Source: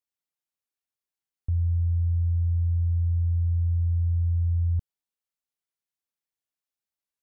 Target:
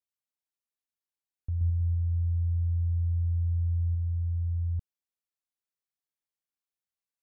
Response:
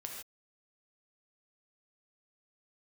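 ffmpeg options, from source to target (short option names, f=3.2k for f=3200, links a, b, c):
-filter_complex "[0:a]asettb=1/sr,asplit=3[a][b][c];[a]atrim=end=1.544[d];[b]atrim=start=1.54:end=3.95,asetpts=PTS-STARTPTS,afade=t=in:d=0.004:c=qsin,afade=t=out:st=2.406:d=0.004:c=qsin,aecho=1:1:70|157.5|266.9|403.6|574.5:0.631|0.398|0.251|0.158|0.1,atrim=end_sample=106281[e];[c]atrim=start=3.946[f];[d][e]acrossfade=d=0.004:c1=hsin:c2=qsin[g];[g][f]acrossfade=d=0.004:c1=qsin:c2=hsin,volume=-5.5dB"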